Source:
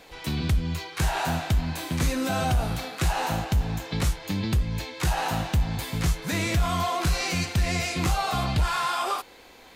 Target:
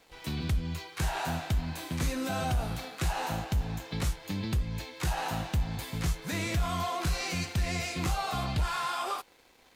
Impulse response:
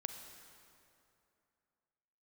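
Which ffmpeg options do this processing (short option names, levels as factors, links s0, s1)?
-af "aeval=exprs='sgn(val(0))*max(abs(val(0))-0.00211,0)':c=same,volume=0.531"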